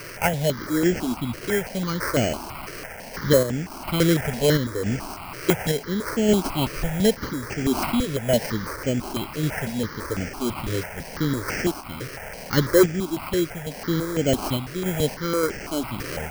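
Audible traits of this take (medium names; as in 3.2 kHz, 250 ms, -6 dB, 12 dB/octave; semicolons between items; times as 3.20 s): a quantiser's noise floor 6-bit, dither triangular; random-step tremolo; aliases and images of a low sample rate 3.6 kHz, jitter 0%; notches that jump at a steady rate 6 Hz 220–3900 Hz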